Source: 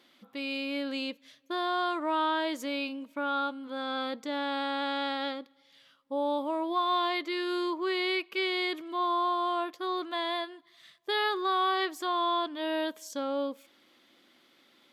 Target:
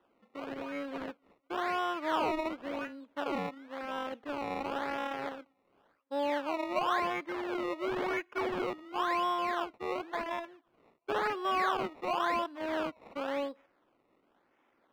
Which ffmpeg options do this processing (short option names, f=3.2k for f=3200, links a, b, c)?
-filter_complex "[0:a]acrusher=samples=19:mix=1:aa=0.000001:lfo=1:lforange=19:lforate=0.94,aeval=exprs='0.126*(cos(1*acos(clip(val(0)/0.126,-1,1)))-cos(1*PI/2))+0.00708*(cos(5*acos(clip(val(0)/0.126,-1,1)))-cos(5*PI/2))+0.0126*(cos(7*acos(clip(val(0)/0.126,-1,1)))-cos(7*PI/2))':c=same,acrossover=split=230 3400:gain=0.224 1 0.0794[a][b][c];[a][b][c]amix=inputs=3:normalize=0,volume=-2dB"